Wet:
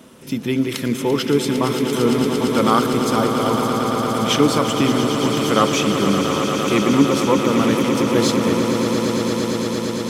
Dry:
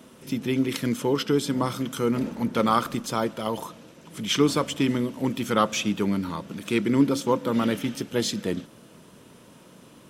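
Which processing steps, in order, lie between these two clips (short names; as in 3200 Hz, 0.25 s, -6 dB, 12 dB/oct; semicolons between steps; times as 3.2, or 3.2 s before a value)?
swelling echo 0.114 s, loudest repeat 8, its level -10 dB; gain +4.5 dB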